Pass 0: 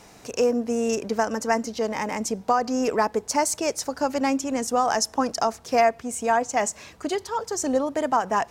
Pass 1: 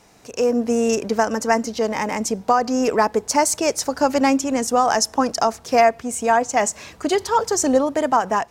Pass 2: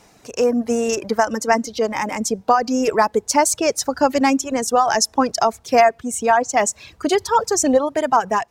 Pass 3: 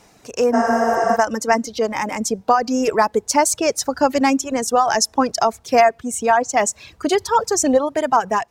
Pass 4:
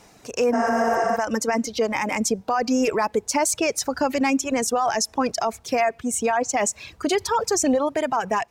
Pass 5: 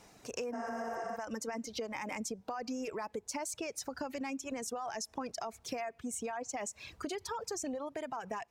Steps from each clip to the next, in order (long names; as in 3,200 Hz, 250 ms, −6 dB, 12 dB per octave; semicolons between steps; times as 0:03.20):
automatic gain control gain up to 17 dB; level −4 dB
reverb reduction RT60 1.2 s; level +2 dB
healed spectral selection 0:00.56–0:01.13, 400–10,000 Hz after
dynamic equaliser 2,400 Hz, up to +7 dB, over −42 dBFS, Q 3.3; brickwall limiter −13 dBFS, peak gain reduction 11 dB
downward compressor 6 to 1, threshold −29 dBFS, peak gain reduction 12 dB; level −7.5 dB